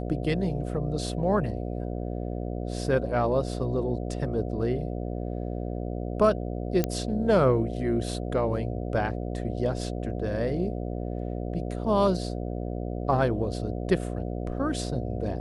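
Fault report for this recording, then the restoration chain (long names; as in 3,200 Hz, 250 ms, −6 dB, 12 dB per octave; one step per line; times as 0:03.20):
mains buzz 60 Hz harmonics 12 −32 dBFS
0:06.84: click −11 dBFS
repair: click removal
hum removal 60 Hz, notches 12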